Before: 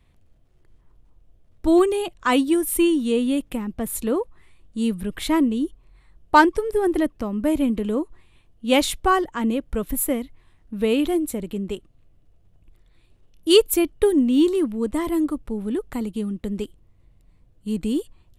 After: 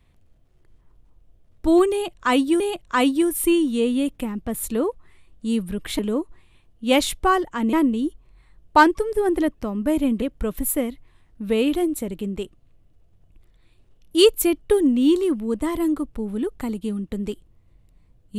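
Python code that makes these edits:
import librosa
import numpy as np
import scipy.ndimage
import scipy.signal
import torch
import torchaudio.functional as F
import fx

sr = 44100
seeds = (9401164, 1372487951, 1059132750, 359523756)

y = fx.edit(x, sr, fx.repeat(start_s=1.92, length_s=0.68, count=2),
    fx.move(start_s=7.8, length_s=1.74, to_s=5.31), tone=tone)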